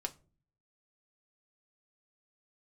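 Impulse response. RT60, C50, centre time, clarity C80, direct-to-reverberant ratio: non-exponential decay, 20.0 dB, 5 ms, 26.0 dB, 3.5 dB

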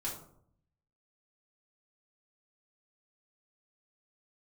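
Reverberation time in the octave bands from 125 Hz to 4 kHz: 1.0, 0.85, 0.70, 0.60, 0.40, 0.30 seconds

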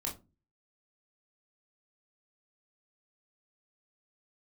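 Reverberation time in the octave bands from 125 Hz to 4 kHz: 0.50, 0.45, 0.30, 0.25, 0.20, 0.15 seconds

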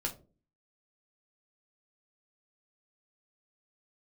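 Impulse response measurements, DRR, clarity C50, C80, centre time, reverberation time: 1.0 dB, 14.0 dB, 19.0 dB, 14 ms, 0.35 s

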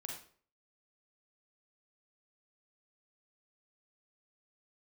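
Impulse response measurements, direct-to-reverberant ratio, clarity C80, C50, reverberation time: −0.5 dB, 8.0 dB, 3.0 dB, 0.50 s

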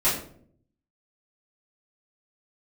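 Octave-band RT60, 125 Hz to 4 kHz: 1.0, 0.85, 0.70, 0.50, 0.40, 0.35 seconds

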